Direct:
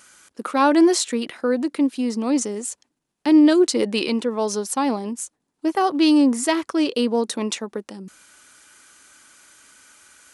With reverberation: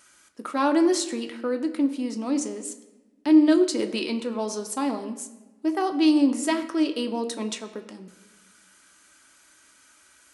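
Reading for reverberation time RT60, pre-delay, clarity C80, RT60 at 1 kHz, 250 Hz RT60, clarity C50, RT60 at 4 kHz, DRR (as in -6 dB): 1.2 s, 3 ms, 13.5 dB, 1.1 s, 1.5 s, 12.0 dB, 0.85 s, 5.5 dB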